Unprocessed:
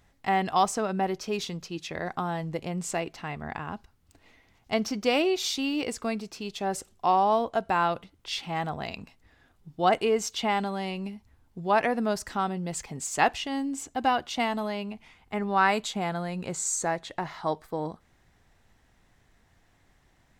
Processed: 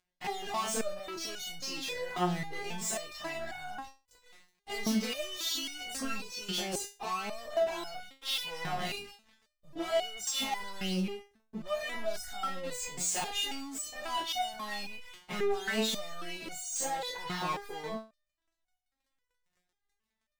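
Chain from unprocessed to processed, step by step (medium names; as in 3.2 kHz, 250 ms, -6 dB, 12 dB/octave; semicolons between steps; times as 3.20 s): every event in the spectrogram widened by 60 ms; peak limiter -16 dBFS, peak gain reduction 10.5 dB; peaking EQ 3.6 kHz +5 dB 1.4 oct; hum notches 60/120/180 Hz; waveshaping leveller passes 5; resonator arpeggio 3.7 Hz 180–740 Hz; trim -4.5 dB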